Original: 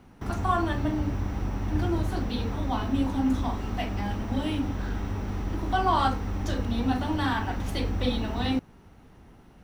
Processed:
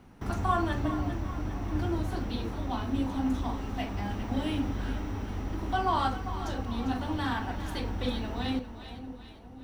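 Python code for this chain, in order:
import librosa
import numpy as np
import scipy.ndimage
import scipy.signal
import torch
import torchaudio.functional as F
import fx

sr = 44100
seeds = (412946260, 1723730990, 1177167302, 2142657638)

y = fx.rider(x, sr, range_db=10, speed_s=2.0)
y = fx.echo_split(y, sr, split_hz=810.0, low_ms=531, high_ms=399, feedback_pct=52, wet_db=-11)
y = y * 10.0 ** (-4.5 / 20.0)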